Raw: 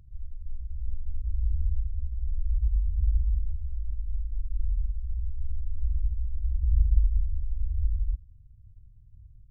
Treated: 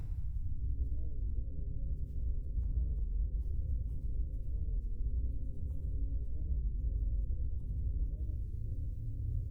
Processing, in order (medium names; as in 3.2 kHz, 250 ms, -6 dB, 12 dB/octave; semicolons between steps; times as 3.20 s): random holes in the spectrogram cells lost 21%; compressor with a negative ratio -28 dBFS, ratio -0.5; peak limiter -43.5 dBFS, peak gain reduction 24.5 dB; frequency-shifting echo 183 ms, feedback 58%, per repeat -140 Hz, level -23 dB; FDN reverb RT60 1.4 s, low-frequency decay 1.5×, high-frequency decay 0.9×, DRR -1 dB; warped record 33 1/3 rpm, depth 250 cents; trim +9.5 dB